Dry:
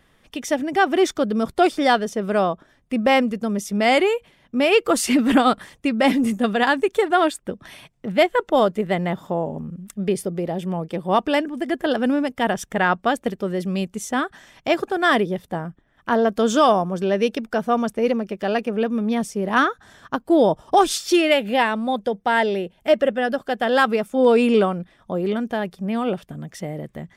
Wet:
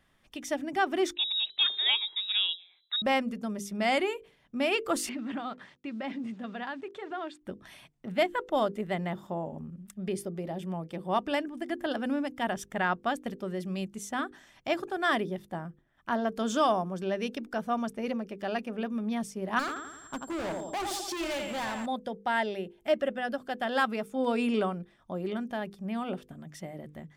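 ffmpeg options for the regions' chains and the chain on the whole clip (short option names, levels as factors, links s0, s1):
-filter_complex "[0:a]asettb=1/sr,asplit=3[s0][s1][s2];[s0]atrim=end=1.154[s3];[s1]atrim=start=1.15:end=3.02,asetpts=PTS-STARTPTS,afade=t=in:d=0.004:c=qsin,afade=t=out:st=1.866:d=0.004:c=qsin,bandreject=f=179.3:t=h:w=4,bandreject=f=358.6:t=h:w=4,bandreject=f=537.9:t=h:w=4,bandreject=f=717.2:t=h:w=4,bandreject=f=896.5:t=h:w=4,lowpass=f=3400:t=q:w=0.5098,lowpass=f=3400:t=q:w=0.6013,lowpass=f=3400:t=q:w=0.9,lowpass=f=3400:t=q:w=2.563,afreqshift=-4000[s4];[s2]atrim=start=3.016[s5];[s3][s4]acrossfade=d=0.004:c1=hsin:c2=qsin[s6];[s6][s5]acrossfade=d=0.004:c1=qsin:c2=hsin,asettb=1/sr,asplit=3[s7][s8][s9];[s7]atrim=end=5.094[s10];[s8]atrim=start=5.09:end=7.41,asetpts=PTS-STARTPTS,afade=t=in:d=0.004:c=qsin,afade=t=out:st=2.316:d=0.004:c=qsin,acompressor=threshold=0.0447:ratio=2.5:attack=3.2:release=140:knee=1:detection=peak,acrusher=bits=7:mix=0:aa=0.5,highpass=110,lowpass=3700[s11];[s9]atrim=start=7.406[s12];[s10][s11]acrossfade=d=0.004:c1=hsin:c2=qsin[s13];[s13][s12]acrossfade=d=0.004:c1=qsin:c2=hsin,asettb=1/sr,asplit=3[s14][s15][s16];[s14]atrim=end=19.594[s17];[s15]atrim=start=19.59:end=21.86,asetpts=PTS-STARTPTS,afade=t=in:d=0.004:c=qsin,afade=t=out:st=2.266:d=0.004:c=qsin,aecho=1:1:85|170|255|340|425|510:0.355|0.192|0.103|0.0559|0.0302|0.0163,atrim=end_sample=100107,aeval=exprs='val(0)+0.00794*sin(2*PI*7500*n/s)':c=same,asoftclip=type=hard:threshold=0.0841[s18];[s16]atrim=start=21.856[s19];[s17][s18]acrossfade=d=0.004:c1=hsin:c2=qsin[s20];[s20][s19]acrossfade=d=0.004:c1=qsin:c2=hsin,equalizer=f=470:w=6.9:g=-8,bandreject=f=50:t=h:w=6,bandreject=f=100:t=h:w=6,bandreject=f=150:t=h:w=6,bandreject=f=200:t=h:w=6,bandreject=f=250:t=h:w=6,bandreject=f=300:t=h:w=6,bandreject=f=350:t=h:w=6,bandreject=f=400:t=h:w=6,bandreject=f=450:t=h:w=6,bandreject=f=500:t=h:w=6,deesser=0.35,volume=0.355"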